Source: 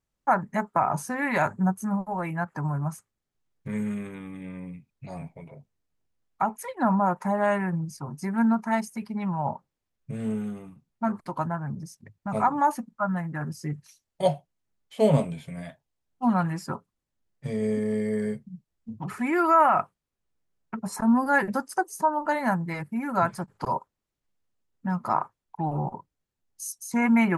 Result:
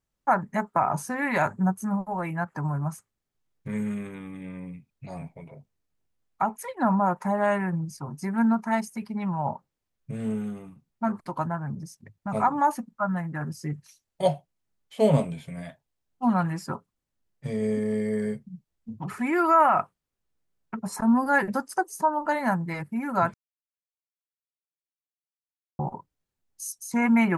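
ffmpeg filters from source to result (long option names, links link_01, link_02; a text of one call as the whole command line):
ffmpeg -i in.wav -filter_complex "[0:a]asplit=3[link_01][link_02][link_03];[link_01]atrim=end=23.34,asetpts=PTS-STARTPTS,afade=type=out:start_time=23.336:duration=0.004:curve=hsin[link_04];[link_02]atrim=start=23.34:end=25.79,asetpts=PTS-STARTPTS,volume=0[link_05];[link_03]atrim=start=25.79,asetpts=PTS-STARTPTS,afade=type=in:duration=0.004:curve=hsin[link_06];[link_04][link_05][link_06]concat=n=3:v=0:a=1" out.wav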